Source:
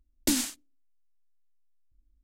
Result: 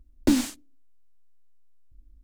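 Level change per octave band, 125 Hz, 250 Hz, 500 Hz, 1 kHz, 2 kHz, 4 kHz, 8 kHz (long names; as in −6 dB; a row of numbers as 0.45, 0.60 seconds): +9.0, +7.5, +7.0, +5.5, +1.0, −2.5, −5.5 decibels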